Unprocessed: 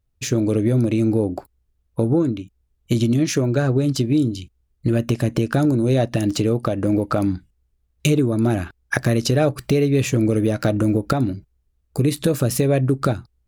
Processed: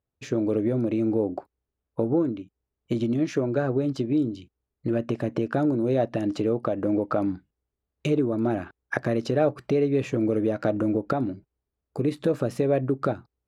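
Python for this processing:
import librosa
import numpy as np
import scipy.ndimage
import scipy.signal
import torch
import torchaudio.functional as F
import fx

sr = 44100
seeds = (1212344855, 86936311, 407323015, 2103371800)

y = fx.bandpass_q(x, sr, hz=610.0, q=0.54)
y = y * 10.0 ** (-2.5 / 20.0)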